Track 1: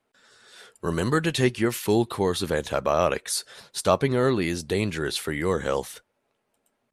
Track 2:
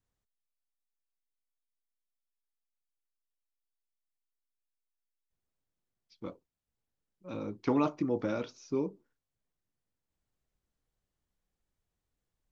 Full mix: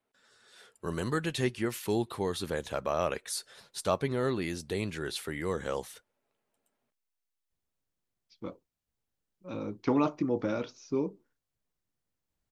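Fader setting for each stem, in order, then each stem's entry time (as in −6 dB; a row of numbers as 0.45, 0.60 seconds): −8.0, +1.5 decibels; 0.00, 2.20 seconds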